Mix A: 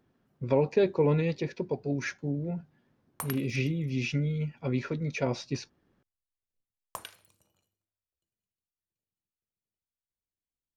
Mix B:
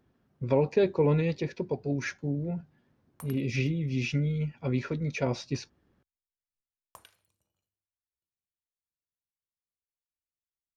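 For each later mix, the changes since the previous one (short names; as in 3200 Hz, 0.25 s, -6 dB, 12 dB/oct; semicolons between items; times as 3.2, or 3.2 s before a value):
background -11.5 dB; master: add bell 64 Hz +6.5 dB 1.2 oct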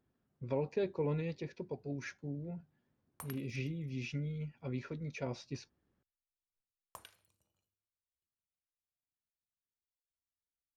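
speech -10.5 dB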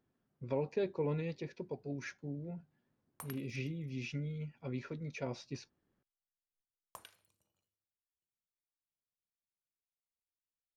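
master: add bell 64 Hz -6.5 dB 1.2 oct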